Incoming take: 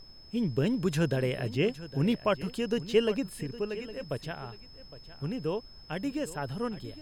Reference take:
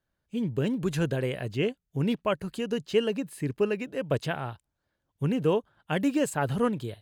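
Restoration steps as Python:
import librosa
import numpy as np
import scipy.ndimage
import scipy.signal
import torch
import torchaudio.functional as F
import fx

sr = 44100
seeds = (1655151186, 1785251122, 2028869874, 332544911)

y = fx.notch(x, sr, hz=5200.0, q=30.0)
y = fx.noise_reduce(y, sr, print_start_s=4.56, print_end_s=5.06, reduce_db=30.0)
y = fx.fix_echo_inverse(y, sr, delay_ms=811, level_db=-16.0)
y = fx.fix_level(y, sr, at_s=3.43, step_db=7.5)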